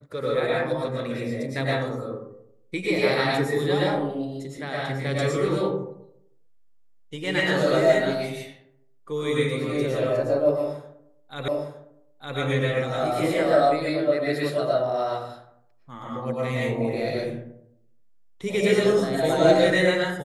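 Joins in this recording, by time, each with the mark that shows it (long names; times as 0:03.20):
0:11.48: the same again, the last 0.91 s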